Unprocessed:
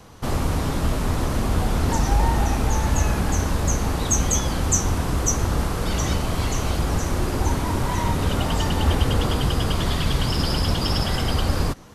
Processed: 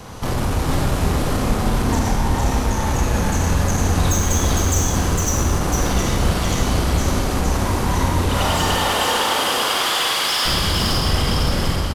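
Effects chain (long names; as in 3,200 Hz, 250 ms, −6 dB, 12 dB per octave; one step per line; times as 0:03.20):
0:08.28–0:10.45: high-pass filter 470 Hz → 1,100 Hz 12 dB per octave
downward compressor, threshold −24 dBFS, peak gain reduction 10 dB
soft clipping −27 dBFS, distortion −12 dB
single-tap delay 456 ms −3 dB
four-comb reverb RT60 1.3 s, combs from 31 ms, DRR 0.5 dB
level +9 dB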